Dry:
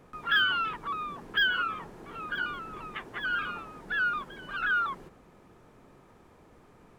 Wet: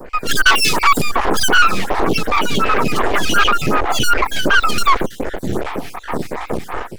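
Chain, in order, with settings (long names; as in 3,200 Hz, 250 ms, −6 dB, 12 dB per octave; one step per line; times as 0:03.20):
time-frequency cells dropped at random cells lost 52%
0:02.13–0:02.91: notch comb filter 350 Hz
0:03.78–0:04.24: bass and treble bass 0 dB, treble −12 dB
half-wave rectification
0:00.46–0:01.02: high-shelf EQ 3,100 Hz +11.5 dB
soft clipping −33 dBFS, distortion −7 dB
automatic gain control gain up to 16 dB
boost into a limiter +28.5 dB
phaser with staggered stages 2.7 Hz
level −1 dB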